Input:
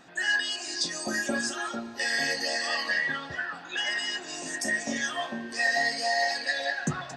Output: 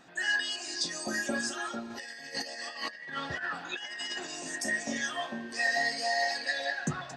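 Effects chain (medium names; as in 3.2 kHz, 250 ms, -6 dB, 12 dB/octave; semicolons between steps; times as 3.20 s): 1.90–4.27 s: compressor with a negative ratio -34 dBFS, ratio -0.5; trim -3 dB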